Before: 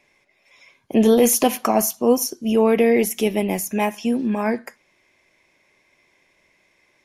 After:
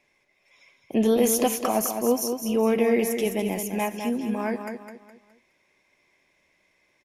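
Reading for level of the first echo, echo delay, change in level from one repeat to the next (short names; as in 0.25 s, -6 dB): -7.0 dB, 0.208 s, -8.5 dB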